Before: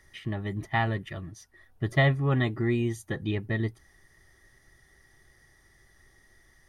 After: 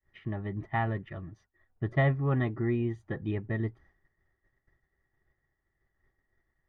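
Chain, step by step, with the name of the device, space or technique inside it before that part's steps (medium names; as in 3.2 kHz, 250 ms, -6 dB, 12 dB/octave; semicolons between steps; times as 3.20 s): hearing-loss simulation (low-pass 1.8 kHz 12 dB/octave; expander -51 dBFS); trim -2.5 dB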